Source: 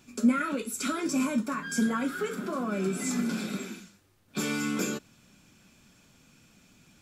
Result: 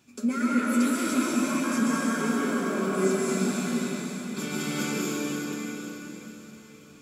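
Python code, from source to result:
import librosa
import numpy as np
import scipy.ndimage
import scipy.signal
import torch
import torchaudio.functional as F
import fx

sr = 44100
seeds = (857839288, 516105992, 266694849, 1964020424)

p1 = scipy.signal.sosfilt(scipy.signal.butter(2, 70.0, 'highpass', fs=sr, output='sos'), x)
p2 = p1 + fx.echo_alternate(p1, sr, ms=265, hz=1100.0, feedback_pct=50, wet_db=-7.5, dry=0)
p3 = fx.rev_plate(p2, sr, seeds[0], rt60_s=4.3, hf_ratio=0.9, predelay_ms=115, drr_db=-6.5)
y = p3 * librosa.db_to_amplitude(-4.0)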